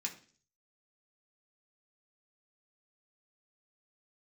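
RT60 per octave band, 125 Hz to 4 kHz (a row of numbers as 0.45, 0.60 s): 0.65, 0.55, 0.50, 0.40, 0.45, 0.55 s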